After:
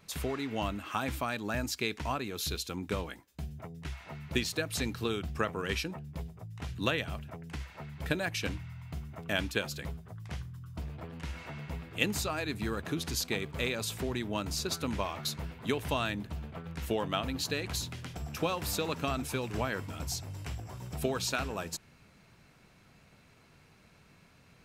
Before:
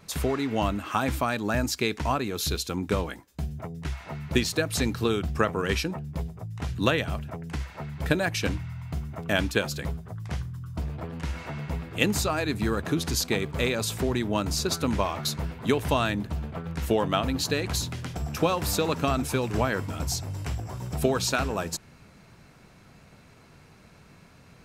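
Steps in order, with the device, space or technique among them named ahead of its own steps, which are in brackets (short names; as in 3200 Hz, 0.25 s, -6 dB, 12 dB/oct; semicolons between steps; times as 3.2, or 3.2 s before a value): presence and air boost (bell 2800 Hz +4 dB 1.4 oct; high shelf 11000 Hz +4.5 dB); gain -8 dB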